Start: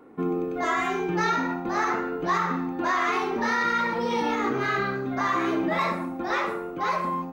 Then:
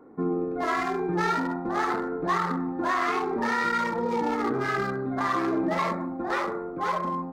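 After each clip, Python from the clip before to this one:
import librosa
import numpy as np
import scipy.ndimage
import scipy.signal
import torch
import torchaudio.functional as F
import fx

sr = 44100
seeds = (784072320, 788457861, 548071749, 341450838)

y = fx.wiener(x, sr, points=15)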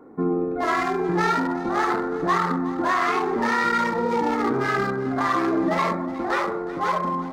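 y = fx.echo_feedback(x, sr, ms=367, feedback_pct=29, wet_db=-16.5)
y = y * 10.0 ** (4.0 / 20.0)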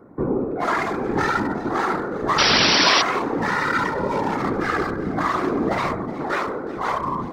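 y = fx.spec_paint(x, sr, seeds[0], shape='noise', start_s=2.38, length_s=0.64, low_hz=290.0, high_hz=5800.0, level_db=-17.0)
y = fx.whisperise(y, sr, seeds[1])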